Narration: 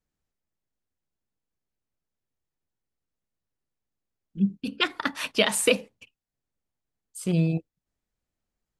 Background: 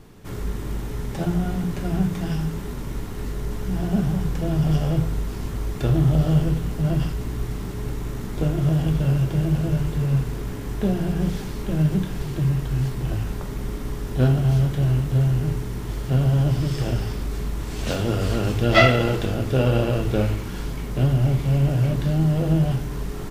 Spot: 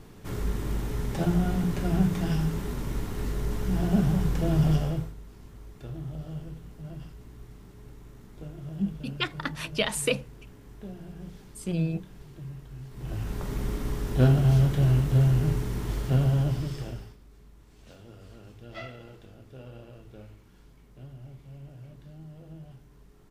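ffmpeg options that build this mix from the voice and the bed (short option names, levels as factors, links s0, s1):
-filter_complex "[0:a]adelay=4400,volume=0.562[s0];[1:a]volume=6.31,afade=t=out:st=4.64:d=0.5:silence=0.133352,afade=t=in:st=12.89:d=0.65:silence=0.133352,afade=t=out:st=15.93:d=1.24:silence=0.0595662[s1];[s0][s1]amix=inputs=2:normalize=0"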